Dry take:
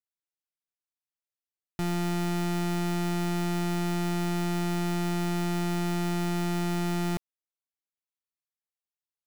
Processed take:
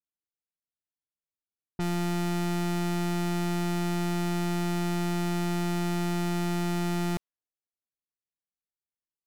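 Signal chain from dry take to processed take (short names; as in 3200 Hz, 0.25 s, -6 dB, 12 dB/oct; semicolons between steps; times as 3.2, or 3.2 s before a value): low-pass opened by the level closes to 420 Hz, open at -28 dBFS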